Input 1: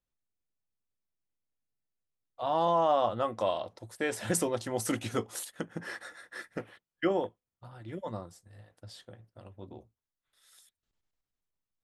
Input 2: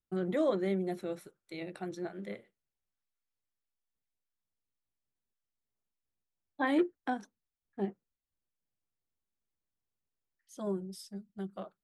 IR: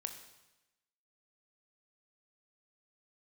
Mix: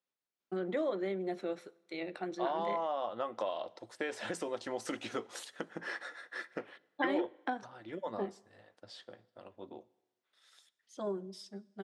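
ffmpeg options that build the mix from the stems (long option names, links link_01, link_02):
-filter_complex "[0:a]acompressor=threshold=-33dB:ratio=6,volume=-0.5dB,asplit=2[link_01][link_02];[link_02]volume=-11dB[link_03];[1:a]acompressor=threshold=-32dB:ratio=6,adelay=400,volume=1.5dB,asplit=2[link_04][link_05];[link_05]volume=-12dB[link_06];[2:a]atrim=start_sample=2205[link_07];[link_03][link_06]amix=inputs=2:normalize=0[link_08];[link_08][link_07]afir=irnorm=-1:irlink=0[link_09];[link_01][link_04][link_09]amix=inputs=3:normalize=0,highpass=290,lowpass=5200"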